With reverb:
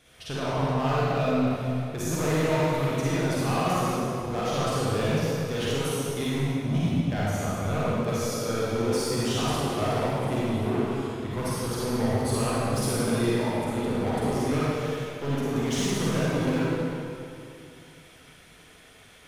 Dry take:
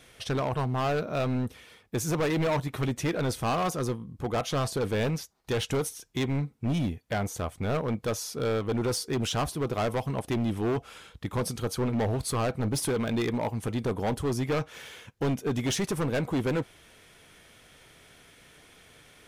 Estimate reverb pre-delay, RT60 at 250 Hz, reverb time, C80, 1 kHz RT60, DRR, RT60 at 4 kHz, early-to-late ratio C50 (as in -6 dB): 36 ms, 2.7 s, 2.6 s, -3.5 dB, 2.6 s, -8.5 dB, 2.1 s, -6.5 dB